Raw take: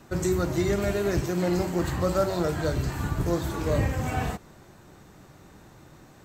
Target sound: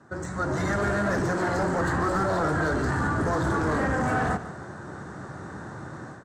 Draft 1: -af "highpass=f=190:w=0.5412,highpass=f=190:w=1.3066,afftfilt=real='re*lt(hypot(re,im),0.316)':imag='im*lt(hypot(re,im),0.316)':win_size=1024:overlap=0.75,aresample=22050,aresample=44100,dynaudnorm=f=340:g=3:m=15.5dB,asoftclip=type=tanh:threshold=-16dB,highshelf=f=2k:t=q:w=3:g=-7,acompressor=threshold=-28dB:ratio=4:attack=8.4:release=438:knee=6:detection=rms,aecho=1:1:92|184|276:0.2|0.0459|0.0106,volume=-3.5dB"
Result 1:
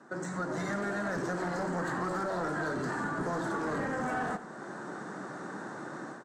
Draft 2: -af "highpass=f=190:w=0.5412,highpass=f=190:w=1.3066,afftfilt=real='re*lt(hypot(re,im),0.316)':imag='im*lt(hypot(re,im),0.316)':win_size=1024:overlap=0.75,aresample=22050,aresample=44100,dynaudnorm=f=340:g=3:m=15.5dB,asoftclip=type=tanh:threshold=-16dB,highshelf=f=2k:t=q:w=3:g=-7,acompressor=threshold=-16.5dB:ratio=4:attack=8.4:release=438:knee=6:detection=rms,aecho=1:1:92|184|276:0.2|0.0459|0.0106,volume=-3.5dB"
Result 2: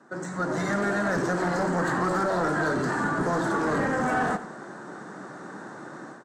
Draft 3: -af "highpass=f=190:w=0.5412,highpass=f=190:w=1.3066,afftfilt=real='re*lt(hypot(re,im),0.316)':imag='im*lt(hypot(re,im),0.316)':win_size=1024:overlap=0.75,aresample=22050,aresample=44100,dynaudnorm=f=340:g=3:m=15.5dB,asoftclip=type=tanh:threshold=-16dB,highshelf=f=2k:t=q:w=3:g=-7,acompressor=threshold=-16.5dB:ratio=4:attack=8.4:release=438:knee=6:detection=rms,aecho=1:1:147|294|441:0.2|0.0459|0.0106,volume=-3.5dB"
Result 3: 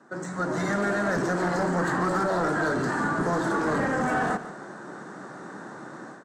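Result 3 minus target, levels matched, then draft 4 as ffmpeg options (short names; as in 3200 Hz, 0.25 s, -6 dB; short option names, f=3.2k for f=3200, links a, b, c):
125 Hz band -4.0 dB
-af "highpass=f=76:w=0.5412,highpass=f=76:w=1.3066,afftfilt=real='re*lt(hypot(re,im),0.316)':imag='im*lt(hypot(re,im),0.316)':win_size=1024:overlap=0.75,aresample=22050,aresample=44100,dynaudnorm=f=340:g=3:m=15.5dB,asoftclip=type=tanh:threshold=-16dB,highshelf=f=2k:t=q:w=3:g=-7,acompressor=threshold=-16.5dB:ratio=4:attack=8.4:release=438:knee=6:detection=rms,aecho=1:1:147|294|441:0.2|0.0459|0.0106,volume=-3.5dB"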